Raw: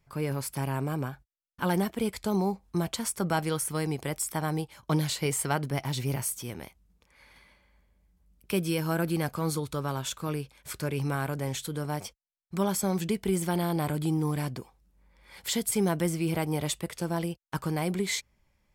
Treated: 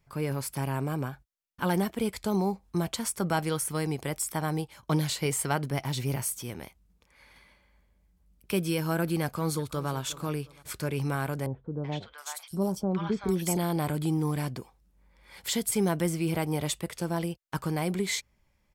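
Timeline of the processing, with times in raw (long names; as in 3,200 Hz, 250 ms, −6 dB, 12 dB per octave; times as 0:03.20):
0:09.22–0:09.90: delay throw 360 ms, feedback 35%, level −16.5 dB
0:11.46–0:13.57: three-band delay without the direct sound lows, mids, highs 380/720 ms, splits 890/3,800 Hz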